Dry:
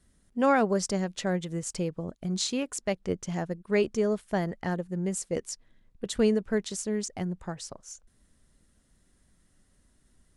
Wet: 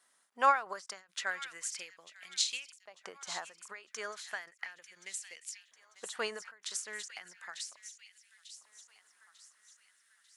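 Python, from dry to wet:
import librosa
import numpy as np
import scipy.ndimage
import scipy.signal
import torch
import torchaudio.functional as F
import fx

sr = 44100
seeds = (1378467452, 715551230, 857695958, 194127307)

y = fx.echo_wet_highpass(x, sr, ms=895, feedback_pct=46, hz=1800.0, wet_db=-13.0)
y = fx.filter_lfo_highpass(y, sr, shape='saw_up', hz=0.35, low_hz=890.0, high_hz=2800.0, q=1.7)
y = fx.end_taper(y, sr, db_per_s=160.0)
y = y * 10.0 ** (1.0 / 20.0)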